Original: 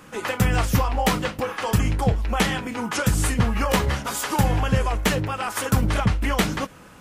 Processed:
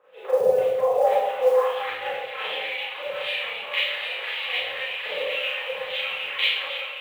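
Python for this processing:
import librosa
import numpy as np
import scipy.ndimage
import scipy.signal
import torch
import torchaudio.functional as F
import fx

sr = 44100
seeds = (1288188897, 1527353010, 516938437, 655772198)

p1 = fx.curve_eq(x, sr, hz=(160.0, 240.0, 490.0, 790.0, 1500.0, 3800.0, 6000.0, 9800.0, 15000.0), db=(0, -15, 6, -8, -13, 3, -28, -8, -30))
p2 = fx.rider(p1, sr, range_db=4, speed_s=0.5)
p3 = p1 + (p2 * librosa.db_to_amplitude(-1.0))
p4 = fx.filter_lfo_bandpass(p3, sr, shape='sine', hz=1.9, low_hz=550.0, high_hz=3000.0, q=2.3)
p5 = p4 + fx.echo_split(p4, sr, split_hz=770.0, low_ms=114, high_ms=763, feedback_pct=52, wet_db=-3, dry=0)
p6 = fx.filter_sweep_bandpass(p5, sr, from_hz=590.0, to_hz=2400.0, start_s=0.99, end_s=2.41, q=1.9)
p7 = fx.quant_float(p6, sr, bits=4)
y = fx.rev_schroeder(p7, sr, rt60_s=0.74, comb_ms=29, drr_db=-9.0)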